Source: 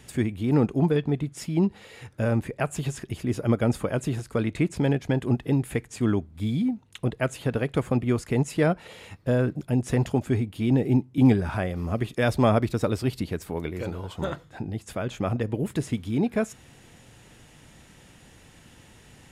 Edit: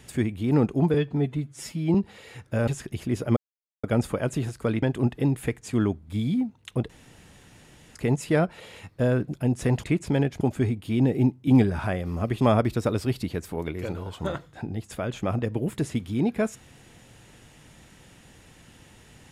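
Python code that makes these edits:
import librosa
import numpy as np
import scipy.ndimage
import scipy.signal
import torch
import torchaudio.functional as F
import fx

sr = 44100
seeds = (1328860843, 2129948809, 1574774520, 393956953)

y = fx.edit(x, sr, fx.stretch_span(start_s=0.94, length_s=0.67, factor=1.5),
    fx.cut(start_s=2.34, length_s=0.51),
    fx.insert_silence(at_s=3.54, length_s=0.47),
    fx.move(start_s=4.53, length_s=0.57, to_s=10.11),
    fx.room_tone_fill(start_s=7.17, length_s=1.06),
    fx.cut(start_s=12.11, length_s=0.27), tone=tone)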